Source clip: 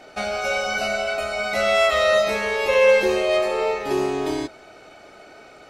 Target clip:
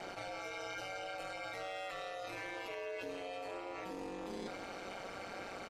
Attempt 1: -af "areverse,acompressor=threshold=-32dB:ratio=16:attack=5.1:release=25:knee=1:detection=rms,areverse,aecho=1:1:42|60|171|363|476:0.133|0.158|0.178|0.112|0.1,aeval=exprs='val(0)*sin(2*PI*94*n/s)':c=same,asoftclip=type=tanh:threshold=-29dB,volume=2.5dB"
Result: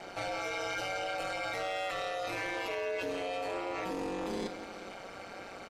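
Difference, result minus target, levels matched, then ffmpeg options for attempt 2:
compressor: peak gain reduction -9 dB
-af "areverse,acompressor=threshold=-41.5dB:ratio=16:attack=5.1:release=25:knee=1:detection=rms,areverse,aecho=1:1:42|60|171|363|476:0.133|0.158|0.178|0.112|0.1,aeval=exprs='val(0)*sin(2*PI*94*n/s)':c=same,asoftclip=type=tanh:threshold=-29dB,volume=2.5dB"

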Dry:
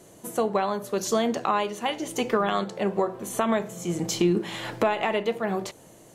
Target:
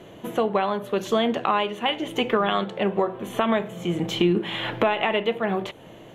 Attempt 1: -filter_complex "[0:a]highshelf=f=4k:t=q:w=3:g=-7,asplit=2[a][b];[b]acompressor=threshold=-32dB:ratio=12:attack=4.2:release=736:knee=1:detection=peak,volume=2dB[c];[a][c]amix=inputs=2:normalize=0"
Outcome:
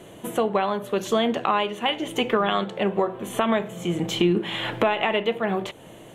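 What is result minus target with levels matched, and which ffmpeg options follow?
8000 Hz band +5.0 dB
-filter_complex "[0:a]highshelf=f=4k:t=q:w=3:g=-7,asplit=2[a][b];[b]acompressor=threshold=-32dB:ratio=12:attack=4.2:release=736:knee=1:detection=peak,lowpass=f=8.9k:w=0.5412,lowpass=f=8.9k:w=1.3066,volume=2dB[c];[a][c]amix=inputs=2:normalize=0"

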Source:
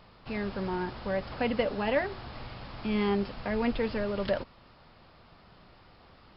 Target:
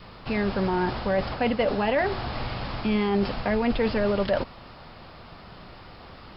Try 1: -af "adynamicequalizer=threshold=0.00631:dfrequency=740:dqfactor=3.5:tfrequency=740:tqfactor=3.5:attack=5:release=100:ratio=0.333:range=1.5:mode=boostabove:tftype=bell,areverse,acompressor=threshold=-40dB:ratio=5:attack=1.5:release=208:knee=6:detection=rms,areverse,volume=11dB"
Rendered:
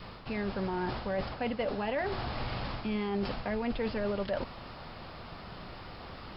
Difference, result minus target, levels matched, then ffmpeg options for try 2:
compressor: peak gain reduction +9 dB
-af "adynamicequalizer=threshold=0.00631:dfrequency=740:dqfactor=3.5:tfrequency=740:tqfactor=3.5:attack=5:release=100:ratio=0.333:range=1.5:mode=boostabove:tftype=bell,areverse,acompressor=threshold=-29dB:ratio=5:attack=1.5:release=208:knee=6:detection=rms,areverse,volume=11dB"

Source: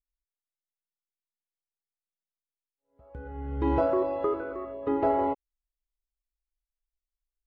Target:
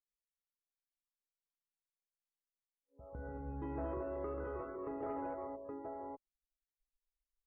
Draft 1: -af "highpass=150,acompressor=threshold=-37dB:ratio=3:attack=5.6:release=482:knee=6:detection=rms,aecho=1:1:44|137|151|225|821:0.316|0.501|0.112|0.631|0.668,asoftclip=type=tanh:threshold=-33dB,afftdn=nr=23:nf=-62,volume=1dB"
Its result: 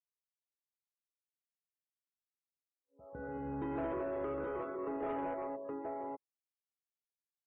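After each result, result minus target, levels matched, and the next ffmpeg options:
125 Hz band -5.5 dB; compressor: peak gain reduction -5 dB
-af "acompressor=threshold=-37dB:ratio=3:attack=5.6:release=482:knee=6:detection=rms,aecho=1:1:44|137|151|225|821:0.316|0.501|0.112|0.631|0.668,asoftclip=type=tanh:threshold=-33dB,afftdn=nr=23:nf=-62,volume=1dB"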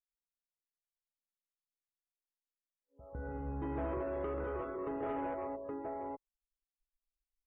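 compressor: peak gain reduction -5 dB
-af "acompressor=threshold=-44.5dB:ratio=3:attack=5.6:release=482:knee=6:detection=rms,aecho=1:1:44|137|151|225|821:0.316|0.501|0.112|0.631|0.668,asoftclip=type=tanh:threshold=-33dB,afftdn=nr=23:nf=-62,volume=1dB"

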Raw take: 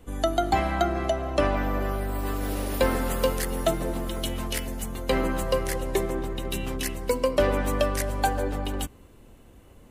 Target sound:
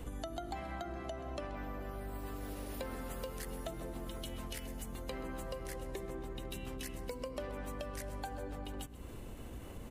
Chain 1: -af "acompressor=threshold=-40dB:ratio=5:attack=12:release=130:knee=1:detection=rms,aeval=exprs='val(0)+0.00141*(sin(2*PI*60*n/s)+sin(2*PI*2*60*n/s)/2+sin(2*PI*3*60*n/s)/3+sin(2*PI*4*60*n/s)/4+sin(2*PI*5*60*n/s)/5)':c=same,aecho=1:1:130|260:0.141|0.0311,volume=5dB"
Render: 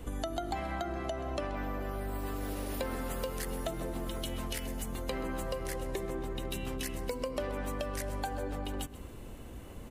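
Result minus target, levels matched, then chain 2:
compressor: peak gain reduction -6.5 dB
-af "acompressor=threshold=-48dB:ratio=5:attack=12:release=130:knee=1:detection=rms,aeval=exprs='val(0)+0.00141*(sin(2*PI*60*n/s)+sin(2*PI*2*60*n/s)/2+sin(2*PI*3*60*n/s)/3+sin(2*PI*4*60*n/s)/4+sin(2*PI*5*60*n/s)/5)':c=same,aecho=1:1:130|260:0.141|0.0311,volume=5dB"

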